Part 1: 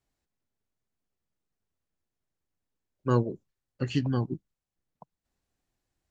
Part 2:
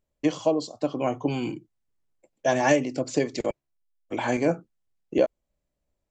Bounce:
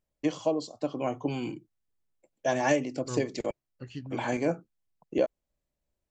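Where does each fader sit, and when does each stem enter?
-12.5, -4.5 dB; 0.00, 0.00 s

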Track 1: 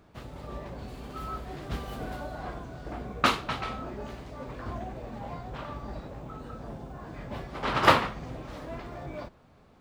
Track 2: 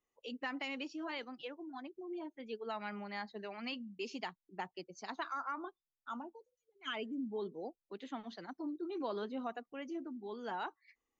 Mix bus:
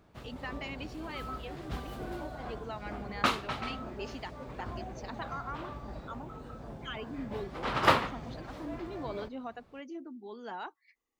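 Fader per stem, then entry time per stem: -4.0, -0.5 dB; 0.00, 0.00 s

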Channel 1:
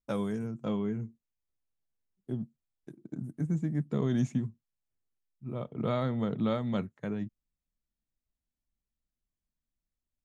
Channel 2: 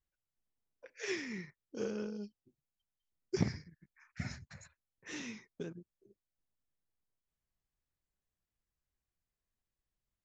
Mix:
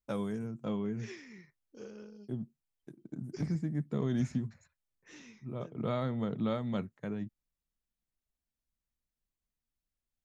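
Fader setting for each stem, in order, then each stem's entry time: -3.0, -9.5 dB; 0.00, 0.00 s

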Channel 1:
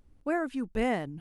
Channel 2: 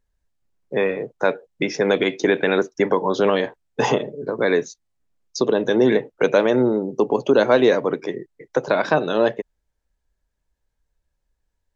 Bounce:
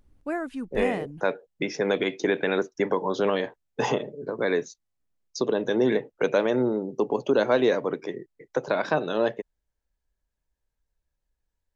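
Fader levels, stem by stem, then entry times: -0.5, -6.0 dB; 0.00, 0.00 s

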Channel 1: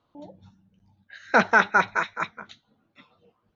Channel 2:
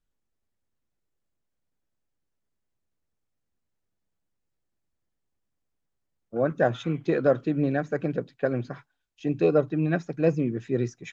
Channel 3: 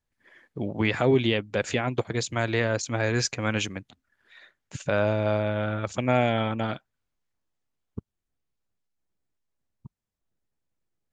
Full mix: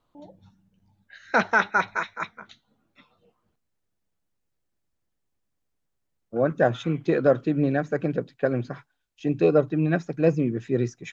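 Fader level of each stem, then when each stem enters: -2.5 dB, +2.0 dB, off; 0.00 s, 0.00 s, off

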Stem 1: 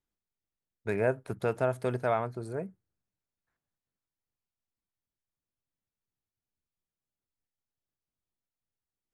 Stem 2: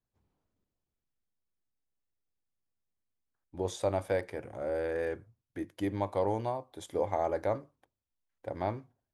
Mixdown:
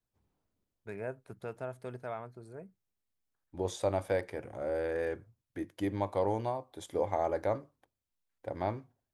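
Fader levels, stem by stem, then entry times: -11.5, -0.5 dB; 0.00, 0.00 s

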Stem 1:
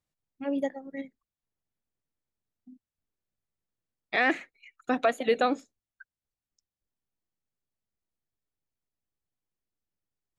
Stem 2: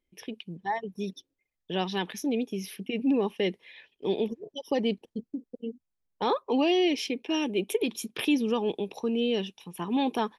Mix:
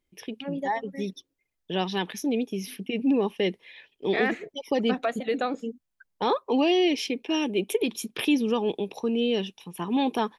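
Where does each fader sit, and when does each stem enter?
-3.0, +2.0 dB; 0.00, 0.00 s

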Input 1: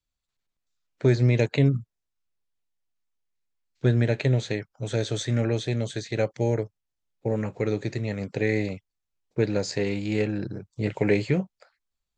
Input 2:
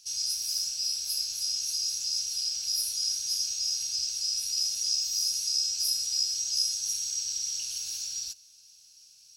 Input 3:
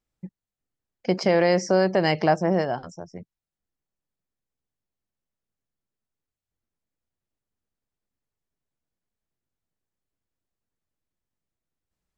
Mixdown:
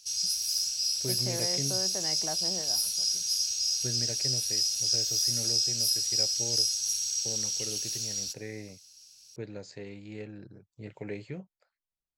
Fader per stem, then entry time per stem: -16.0, +1.0, -18.5 dB; 0.00, 0.00, 0.00 s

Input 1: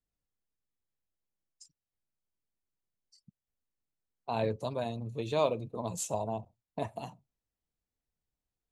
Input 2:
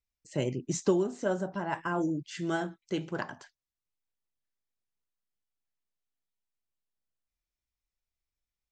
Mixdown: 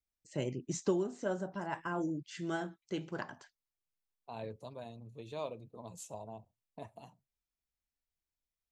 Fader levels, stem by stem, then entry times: -12.0, -5.5 dB; 0.00, 0.00 s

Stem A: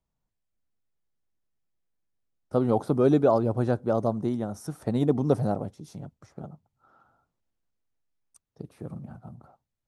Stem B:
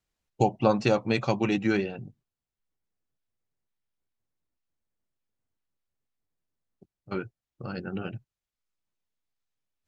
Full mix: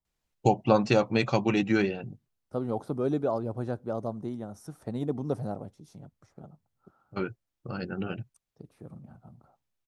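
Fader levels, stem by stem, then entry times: -7.5, +0.5 dB; 0.00, 0.05 s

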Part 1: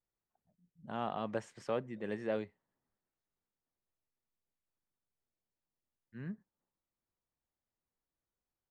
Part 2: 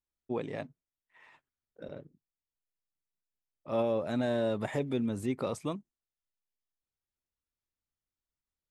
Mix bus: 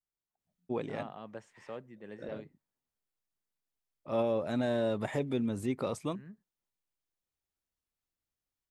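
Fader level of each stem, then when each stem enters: -8.0, -0.5 dB; 0.00, 0.40 s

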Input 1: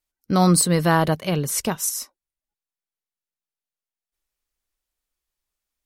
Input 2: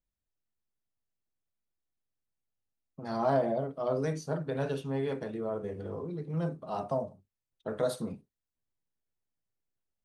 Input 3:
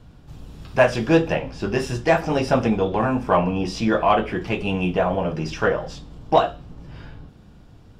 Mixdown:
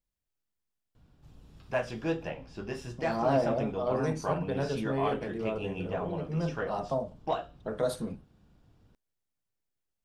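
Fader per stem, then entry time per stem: off, +0.5 dB, -14.5 dB; off, 0.00 s, 0.95 s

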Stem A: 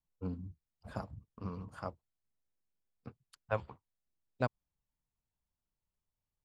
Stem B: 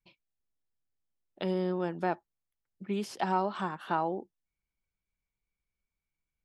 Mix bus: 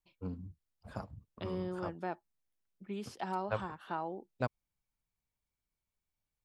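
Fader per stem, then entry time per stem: -1.5, -8.0 dB; 0.00, 0.00 s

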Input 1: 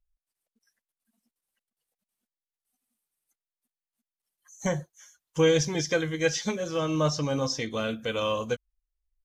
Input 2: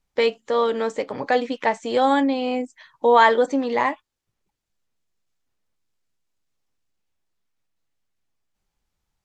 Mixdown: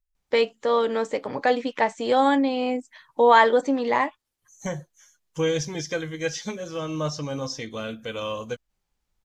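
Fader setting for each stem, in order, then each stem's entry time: -2.5, -1.0 dB; 0.00, 0.15 s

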